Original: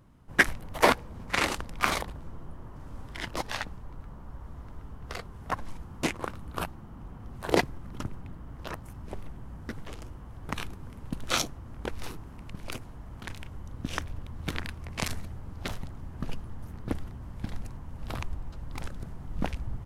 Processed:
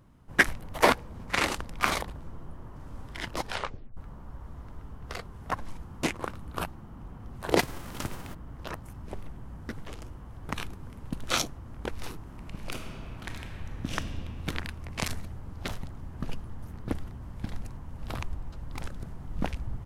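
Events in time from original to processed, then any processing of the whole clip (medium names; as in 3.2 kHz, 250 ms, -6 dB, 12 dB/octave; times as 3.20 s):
3.47 s: tape stop 0.50 s
7.58–8.33 s: formants flattened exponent 0.6
12.22–13.96 s: reverb throw, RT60 2.7 s, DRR 2 dB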